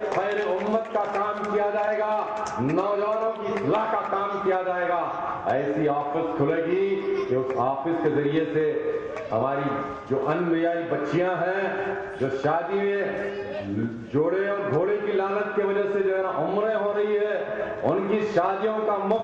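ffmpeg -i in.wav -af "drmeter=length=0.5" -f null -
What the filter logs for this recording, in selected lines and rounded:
Channel 1: DR: 8.9
Overall DR: 8.9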